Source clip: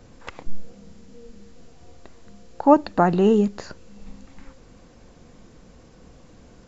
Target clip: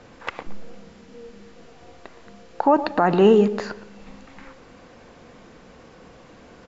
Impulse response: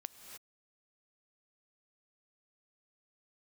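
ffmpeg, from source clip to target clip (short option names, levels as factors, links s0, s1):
-filter_complex "[0:a]lowpass=2300,aemphasis=mode=production:type=riaa,alimiter=limit=0.188:level=0:latency=1:release=68,asplit=2[s0][s1];[s1]adelay=117,lowpass=f=1100:p=1,volume=0.251,asplit=2[s2][s3];[s3]adelay=117,lowpass=f=1100:p=1,volume=0.44,asplit=2[s4][s5];[s5]adelay=117,lowpass=f=1100:p=1,volume=0.44,asplit=2[s6][s7];[s7]adelay=117,lowpass=f=1100:p=1,volume=0.44[s8];[s0][s2][s4][s6][s8]amix=inputs=5:normalize=0,asplit=2[s9][s10];[1:a]atrim=start_sample=2205,afade=t=out:st=0.23:d=0.01,atrim=end_sample=10584,lowshelf=f=170:g=8.5[s11];[s10][s11]afir=irnorm=-1:irlink=0,volume=0.794[s12];[s9][s12]amix=inputs=2:normalize=0,volume=1.68"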